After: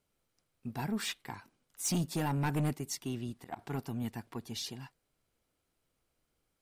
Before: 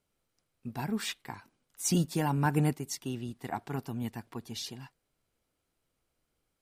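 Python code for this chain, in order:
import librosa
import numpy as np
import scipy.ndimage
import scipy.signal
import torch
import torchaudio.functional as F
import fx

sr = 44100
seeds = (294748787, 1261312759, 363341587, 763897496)

y = 10.0 ** (-26.5 / 20.0) * np.tanh(x / 10.0 ** (-26.5 / 20.0))
y = fx.auto_swell(y, sr, attack_ms=118.0, at=(3.09, 3.59))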